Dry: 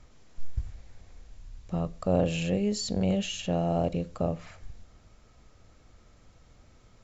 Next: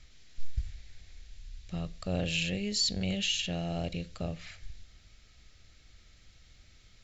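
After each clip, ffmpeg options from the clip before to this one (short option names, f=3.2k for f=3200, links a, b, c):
-af "equalizer=f=125:t=o:w=1:g=-4,equalizer=f=250:t=o:w=1:g=-6,equalizer=f=500:t=o:w=1:g=-7,equalizer=f=1k:t=o:w=1:g=-12,equalizer=f=2k:t=o:w=1:g=5,equalizer=f=4k:t=o:w=1:g=8"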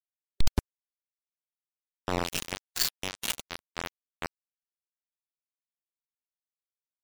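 -af "acrusher=bits=3:mix=0:aa=0.000001,afftdn=nr=22:nf=-46,volume=1.5dB"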